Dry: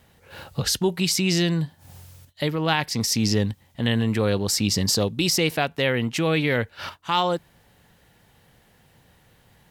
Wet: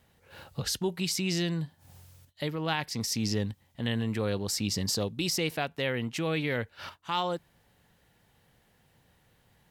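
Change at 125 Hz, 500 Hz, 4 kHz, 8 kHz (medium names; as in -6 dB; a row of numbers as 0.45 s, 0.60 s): -8.0 dB, -8.0 dB, -8.0 dB, -8.0 dB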